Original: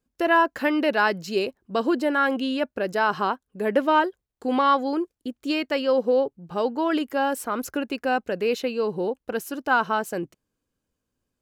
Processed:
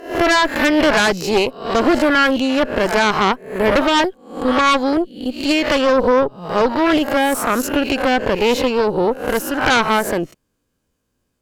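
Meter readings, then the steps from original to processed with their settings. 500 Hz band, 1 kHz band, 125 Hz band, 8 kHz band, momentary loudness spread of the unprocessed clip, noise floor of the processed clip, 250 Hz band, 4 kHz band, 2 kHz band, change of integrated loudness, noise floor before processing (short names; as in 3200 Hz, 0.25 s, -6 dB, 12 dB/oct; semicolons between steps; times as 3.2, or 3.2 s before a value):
+7.5 dB, +6.0 dB, +11.5 dB, +14.0 dB, 9 LU, -71 dBFS, +8.5 dB, +12.5 dB, +8.5 dB, +8.0 dB, -82 dBFS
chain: spectral swells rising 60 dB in 0.50 s; added harmonics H 5 -11 dB, 6 -8 dB, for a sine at -7 dBFS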